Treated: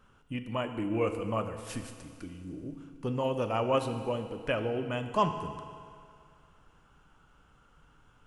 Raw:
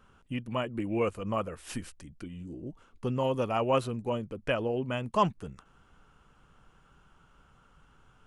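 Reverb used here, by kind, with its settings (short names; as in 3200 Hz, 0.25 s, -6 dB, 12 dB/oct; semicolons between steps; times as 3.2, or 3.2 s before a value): FDN reverb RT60 2.2 s, low-frequency decay 0.85×, high-frequency decay 0.95×, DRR 6.5 dB; gain -1.5 dB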